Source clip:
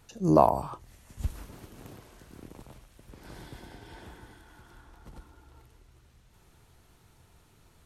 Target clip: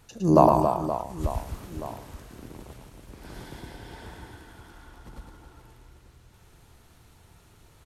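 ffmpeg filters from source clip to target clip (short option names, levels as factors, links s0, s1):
-af "aecho=1:1:110|275|522.5|893.8|1451:0.631|0.398|0.251|0.158|0.1,volume=1.33"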